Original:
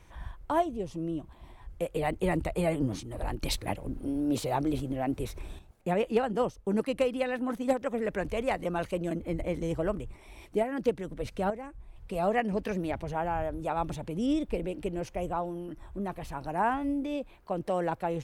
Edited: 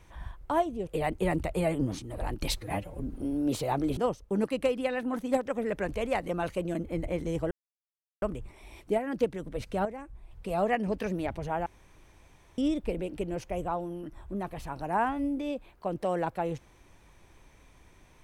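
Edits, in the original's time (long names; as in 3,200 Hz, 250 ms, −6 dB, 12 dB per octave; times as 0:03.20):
0:00.87–0:01.88: remove
0:03.59–0:03.95: time-stretch 1.5×
0:04.80–0:06.33: remove
0:09.87: splice in silence 0.71 s
0:13.31–0:14.23: fill with room tone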